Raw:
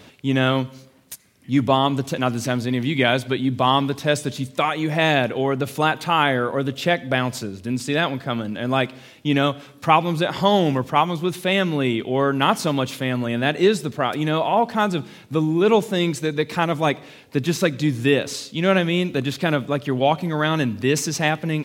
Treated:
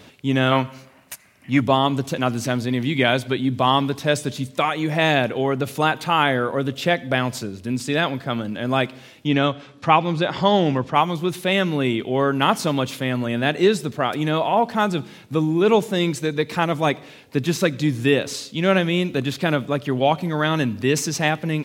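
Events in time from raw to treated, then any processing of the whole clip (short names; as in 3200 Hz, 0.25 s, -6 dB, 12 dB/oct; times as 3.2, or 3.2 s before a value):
0.52–1.6 spectral gain 540–3000 Hz +8 dB
9.27–10.94 LPF 5700 Hz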